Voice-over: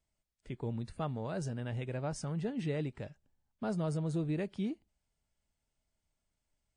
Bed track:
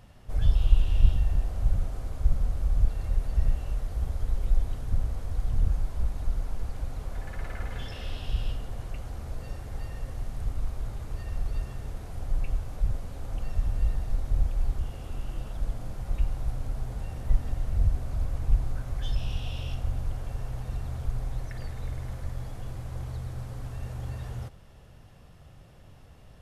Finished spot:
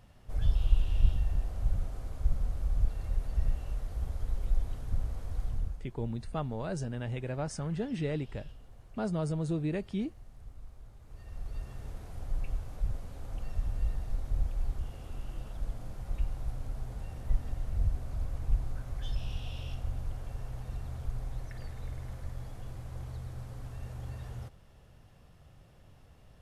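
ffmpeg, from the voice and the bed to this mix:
ffmpeg -i stem1.wav -i stem2.wav -filter_complex "[0:a]adelay=5350,volume=2dB[link_01];[1:a]volume=7dB,afade=type=out:start_time=5.43:duration=0.38:silence=0.237137,afade=type=in:start_time=11.01:duration=0.84:silence=0.251189[link_02];[link_01][link_02]amix=inputs=2:normalize=0" out.wav

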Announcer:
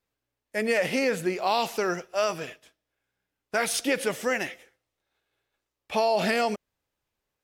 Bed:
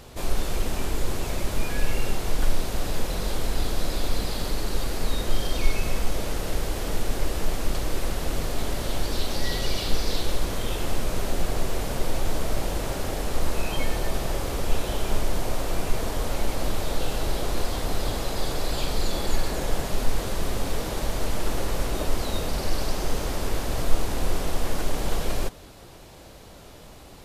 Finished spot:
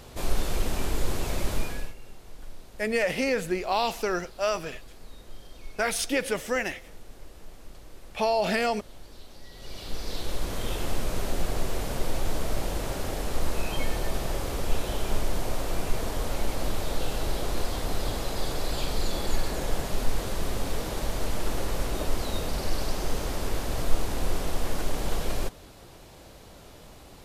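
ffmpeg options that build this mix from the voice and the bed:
ffmpeg -i stem1.wav -i stem2.wav -filter_complex "[0:a]adelay=2250,volume=-1dB[link_01];[1:a]volume=17dB,afade=type=out:start_time=1.52:duration=0.42:silence=0.105925,afade=type=in:start_time=9.53:duration=1.15:silence=0.125893[link_02];[link_01][link_02]amix=inputs=2:normalize=0" out.wav

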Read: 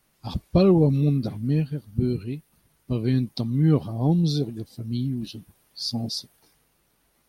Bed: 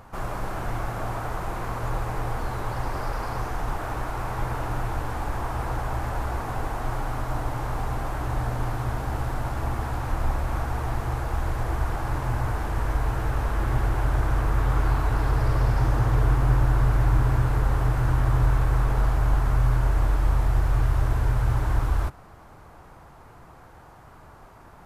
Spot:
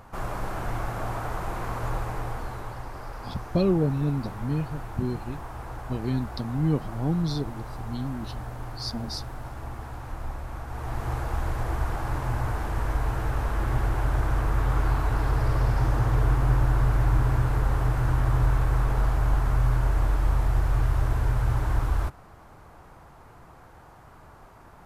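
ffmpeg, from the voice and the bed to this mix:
ffmpeg -i stem1.wav -i stem2.wav -filter_complex "[0:a]adelay=3000,volume=-5dB[link_01];[1:a]volume=6.5dB,afade=type=out:start_time=1.86:duration=1:silence=0.398107,afade=type=in:start_time=10.66:duration=0.45:silence=0.421697[link_02];[link_01][link_02]amix=inputs=2:normalize=0" out.wav

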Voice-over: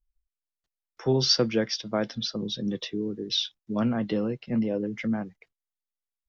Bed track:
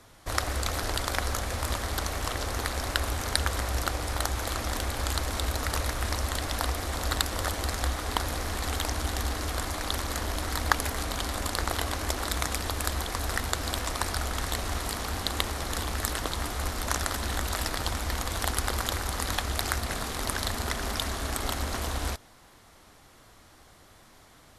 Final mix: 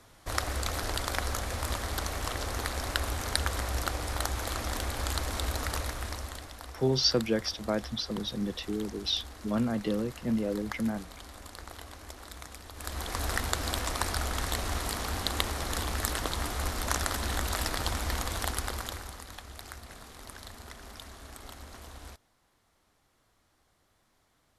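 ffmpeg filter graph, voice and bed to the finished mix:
ffmpeg -i stem1.wav -i stem2.wav -filter_complex "[0:a]adelay=5750,volume=-3dB[link_01];[1:a]volume=12dB,afade=type=out:start_time=5.6:duration=0.95:silence=0.223872,afade=type=in:start_time=12.73:duration=0.49:silence=0.188365,afade=type=out:start_time=18.16:duration=1.09:silence=0.188365[link_02];[link_01][link_02]amix=inputs=2:normalize=0" out.wav

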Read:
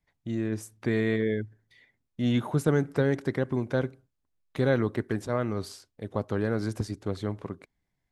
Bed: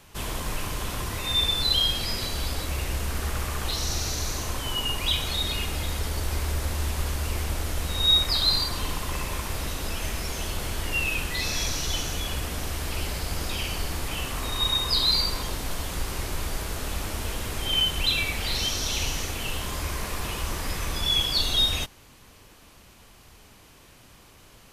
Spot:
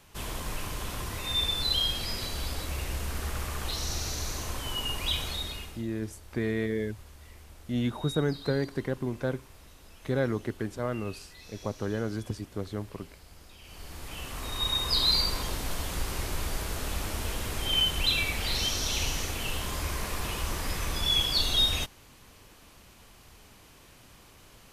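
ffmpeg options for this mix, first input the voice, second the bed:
ffmpeg -i stem1.wav -i stem2.wav -filter_complex "[0:a]adelay=5500,volume=-3.5dB[link_01];[1:a]volume=15.5dB,afade=type=out:start_time=5.21:duration=0.63:silence=0.133352,afade=type=in:start_time=13.61:duration=1.45:silence=0.1[link_02];[link_01][link_02]amix=inputs=2:normalize=0" out.wav

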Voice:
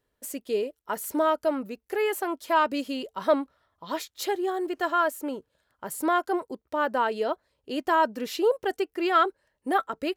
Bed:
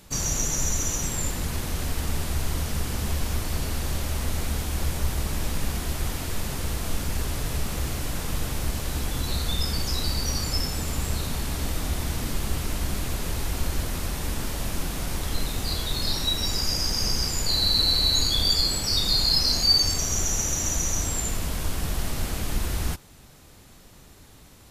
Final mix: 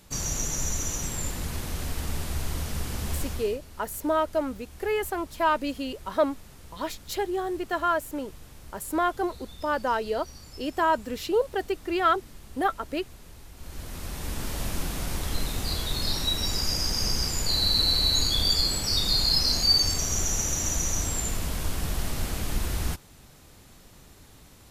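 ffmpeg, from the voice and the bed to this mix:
ffmpeg -i stem1.wav -i stem2.wav -filter_complex "[0:a]adelay=2900,volume=-1dB[link_01];[1:a]volume=14dB,afade=type=out:start_time=3.19:duration=0.4:silence=0.16788,afade=type=in:start_time=13.56:duration=1.04:silence=0.133352[link_02];[link_01][link_02]amix=inputs=2:normalize=0" out.wav

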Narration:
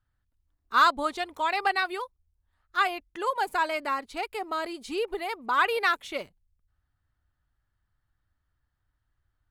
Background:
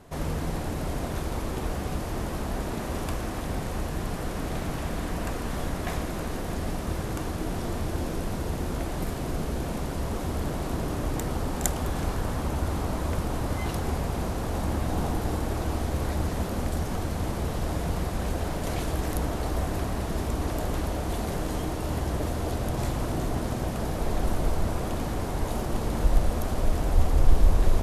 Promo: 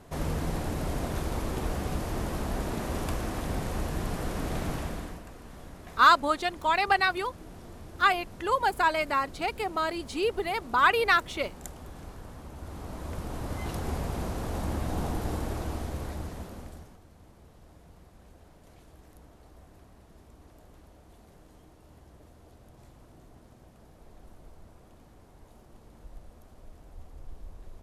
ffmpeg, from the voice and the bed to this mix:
ffmpeg -i stem1.wav -i stem2.wav -filter_complex "[0:a]adelay=5250,volume=2dB[link_01];[1:a]volume=11dB,afade=type=out:start_time=4.71:duration=0.52:silence=0.188365,afade=type=in:start_time=12.54:duration=1.4:silence=0.251189,afade=type=out:start_time=15.4:duration=1.58:silence=0.0794328[link_02];[link_01][link_02]amix=inputs=2:normalize=0" out.wav

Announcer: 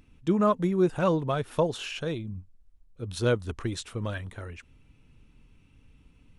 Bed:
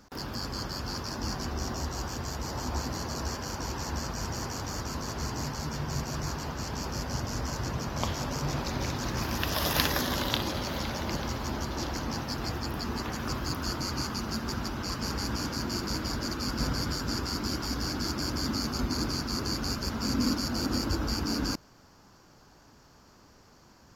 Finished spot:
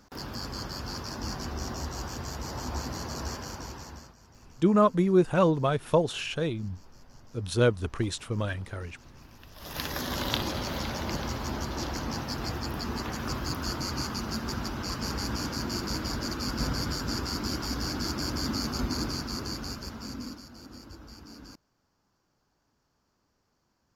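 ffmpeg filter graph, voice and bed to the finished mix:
ffmpeg -i stem1.wav -i stem2.wav -filter_complex "[0:a]adelay=4350,volume=2dB[link_01];[1:a]volume=21dB,afade=type=out:start_time=3.32:duration=0.84:silence=0.0891251,afade=type=in:start_time=9.56:duration=0.76:silence=0.0749894,afade=type=out:start_time=18.85:duration=1.62:silence=0.133352[link_02];[link_01][link_02]amix=inputs=2:normalize=0" out.wav

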